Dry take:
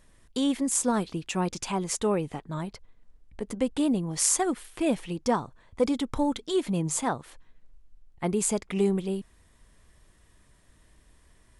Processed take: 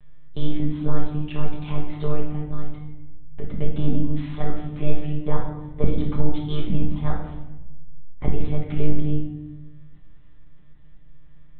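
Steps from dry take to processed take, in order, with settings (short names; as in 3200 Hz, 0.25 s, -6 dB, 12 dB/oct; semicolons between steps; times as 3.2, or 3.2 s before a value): low shelf 64 Hz +3.5 dB; monotone LPC vocoder at 8 kHz 150 Hz; low shelf 240 Hz +10.5 dB; shoebox room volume 410 m³, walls mixed, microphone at 1.3 m; gain -6.5 dB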